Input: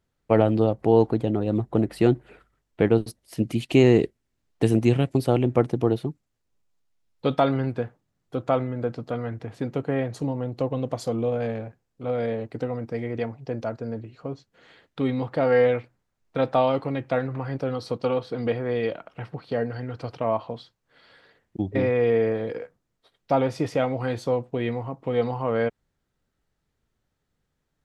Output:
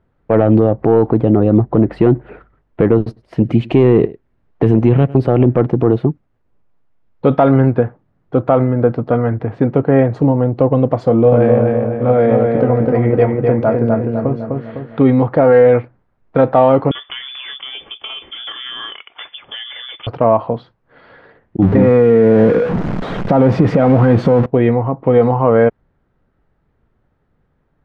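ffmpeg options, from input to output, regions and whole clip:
-filter_complex "[0:a]asettb=1/sr,asplit=3[a][b][c];[a]atrim=end=2.994[d];[b]atrim=start=2.99:end=5.43,asetpts=PTS-STARTPTS,afade=t=in:d=0.004:c=qsin,afade=t=out:st=2.436:d=0.004:c=qsin,equalizer=f=290:t=o:w=0.36:g=-3,aecho=1:1:102:0.0668,atrim=end_sample=107604[e];[c]atrim=start=5.426[f];[d][e]acrossfade=d=0.004:c1=hsin:c2=qsin[g];[g][f]acrossfade=d=0.004:c1=qsin:c2=hsin,asettb=1/sr,asplit=3[h][i][j];[h]atrim=end=11.064[k];[i]atrim=start=11.06:end=15,asetpts=PTS-STARTPTS,afade=t=in:d=0.004:c=qsin,afade=t=out:st=3.936:d=0.004:c=qsin,asplit=2[l][m];[m]adelay=23,volume=-10.5dB[n];[l][n]amix=inputs=2:normalize=0,atrim=end_sample=173754,asplit=2[o][p];[p]adelay=253,lowpass=f=3.8k:p=1,volume=-3.5dB,asplit=2[q][r];[r]adelay=253,lowpass=f=3.8k:p=1,volume=0.49,asplit=2[s][t];[t]adelay=253,lowpass=f=3.8k:p=1,volume=0.49,asplit=2[u][v];[v]adelay=253,lowpass=f=3.8k:p=1,volume=0.49,asplit=2[w][x];[x]adelay=253,lowpass=f=3.8k:p=1,volume=0.49,asplit=2[y][z];[z]adelay=253,lowpass=f=3.8k:p=1,volume=0.49[aa];[o][q][s][u][w][y][aa]amix=inputs=7:normalize=0,atrim=end_sample=173754[ab];[j]atrim=start=14.996[ac];[k][ab]acrossfade=d=0.004:c1=hsin:c2=qsin[ad];[ad][ac]acrossfade=d=0.004:c1=qsin:c2=hsin,asettb=1/sr,asplit=3[ae][af][ag];[ae]atrim=end=16.914[ah];[af]atrim=start=16.91:end=20.07,asetpts=PTS-STARTPTS,afade=t=in:d=0.004:c=qsin,afade=t=out:st=3.156:d=0.004:c=qsin,acompressor=threshold=-26dB:ratio=10:attack=3.2:release=140:knee=1:detection=peak,lowpass=f=3.1k:t=q:w=0.5098,lowpass=f=3.1k:t=q:w=0.6013,lowpass=f=3.1k:t=q:w=0.9,lowpass=f=3.1k:t=q:w=2.563,afreqshift=-3600[ai];[ag]atrim=start=20.066[aj];[ah][ai]acrossfade=d=0.004:c1=hsin:c2=qsin[ak];[ak][aj]acrossfade=d=0.004:c1=qsin:c2=hsin,asettb=1/sr,asplit=3[al][am][an];[al]atrim=end=21.624[ao];[am]atrim=start=21.62:end=24.46,asetpts=PTS-STARTPTS,afade=t=in:d=0.004:c=qsin,afade=t=out:st=2.836:d=0.004:c=qsin,aeval=exprs='val(0)+0.5*0.0355*sgn(val(0))':c=same,acompressor=threshold=-22dB:ratio=6:attack=3.2:release=140:knee=1:detection=peak,equalizer=f=190:t=o:w=0.77:g=10[ap];[an]atrim=start=24.456[aq];[ao][ap]acrossfade=d=0.004:c1=hsin:c2=qsin[ar];[ar][aq]acrossfade=d=0.004:c1=qsin:c2=hsin,lowpass=1.5k,acontrast=62,alimiter=level_in=9.5dB:limit=-1dB:release=50:level=0:latency=1,volume=-1dB"

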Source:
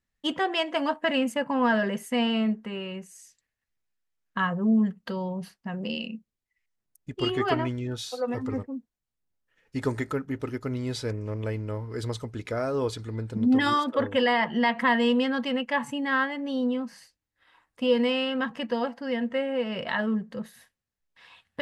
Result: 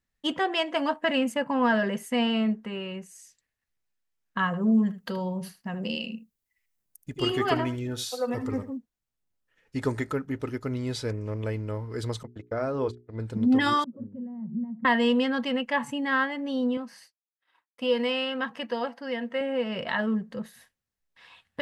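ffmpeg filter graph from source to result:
-filter_complex "[0:a]asettb=1/sr,asplit=3[a][b][c];[a]atrim=end=4.464[d];[b]atrim=start=4.46:end=8.77,asetpts=PTS-STARTPTS,afade=t=in:d=0.004:c=qsin,afade=t=out:st=4.306:d=0.004:c=qsin,highshelf=f=8.4k:g=12,aecho=1:1:76:0.211,atrim=end_sample=190071[e];[c]atrim=start=8.766[f];[d][e]acrossfade=d=0.004:c1=hsin:c2=qsin[g];[g][f]acrossfade=d=0.004:c1=qsin:c2=hsin,asettb=1/sr,asplit=3[h][i][j];[h]atrim=end=12.234[k];[i]atrim=start=12.23:end=13.2,asetpts=PTS-STARTPTS,afade=t=in:d=0.004:c=qsin,afade=t=out:st=0.966:d=0.004:c=qsin,agate=range=-47dB:threshold=-33dB:ratio=16:release=100:detection=peak,lowpass=f=2.5k:p=1,bandreject=f=60:t=h:w=6,bandreject=f=120:t=h:w=6,bandreject=f=180:t=h:w=6,bandreject=f=240:t=h:w=6,bandreject=f=300:t=h:w=6,bandreject=f=360:t=h:w=6,bandreject=f=420:t=h:w=6[l];[j]atrim=start=13.196[m];[k][l]acrossfade=d=0.004:c1=hsin:c2=qsin[n];[n][m]acrossfade=d=0.004:c1=qsin:c2=hsin,asettb=1/sr,asplit=3[o][p][q];[o]atrim=end=13.844[r];[p]atrim=start=13.84:end=14.85,asetpts=PTS-STARTPTS,afade=t=in:d=0.004:c=qsin,afade=t=out:st=1.006:d=0.004:c=qsin,asuperpass=centerf=160:order=4:qfactor=1.5,aecho=1:1:5.3:0.4,atrim=end_sample=44541[s];[q]atrim=start=14.846[t];[r][s]acrossfade=d=0.004:c1=hsin:c2=qsin[u];[u][t]acrossfade=d=0.004:c1=qsin:c2=hsin,asettb=1/sr,asplit=3[v][w][x];[v]atrim=end=16.774[y];[w]atrim=start=16.77:end=19.41,asetpts=PTS-STARTPTS,afade=t=in:d=0.004:c=qsin,afade=t=out:st=2.636:d=0.004:c=qsin,highpass=f=370:p=1,agate=range=-33dB:threshold=-55dB:ratio=3:release=100:detection=peak,equalizer=f=7.2k:w=7.7:g=-5.5[z];[x]atrim=start=19.406[aa];[y][z]acrossfade=d=0.004:c1=hsin:c2=qsin[ab];[ab][aa]acrossfade=d=0.004:c1=qsin:c2=hsin"

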